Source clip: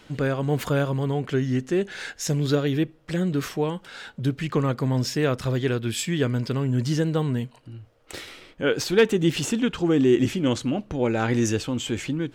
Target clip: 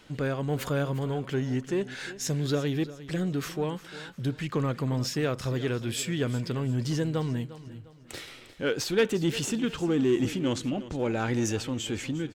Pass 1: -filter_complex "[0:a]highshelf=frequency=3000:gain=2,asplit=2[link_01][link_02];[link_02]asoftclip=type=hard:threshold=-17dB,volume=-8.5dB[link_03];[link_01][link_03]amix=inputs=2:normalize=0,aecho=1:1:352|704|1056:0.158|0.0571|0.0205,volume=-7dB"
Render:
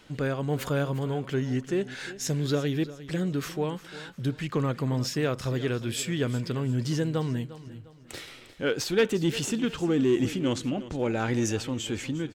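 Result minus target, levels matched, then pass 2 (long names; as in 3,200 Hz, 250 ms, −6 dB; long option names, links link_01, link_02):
hard clipping: distortion −7 dB
-filter_complex "[0:a]highshelf=frequency=3000:gain=2,asplit=2[link_01][link_02];[link_02]asoftclip=type=hard:threshold=-23.5dB,volume=-8.5dB[link_03];[link_01][link_03]amix=inputs=2:normalize=0,aecho=1:1:352|704|1056:0.158|0.0571|0.0205,volume=-7dB"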